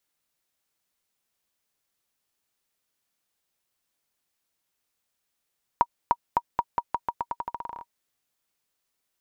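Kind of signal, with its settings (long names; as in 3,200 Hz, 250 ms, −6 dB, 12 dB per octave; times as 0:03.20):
bouncing ball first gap 0.30 s, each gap 0.86, 950 Hz, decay 51 ms −7.5 dBFS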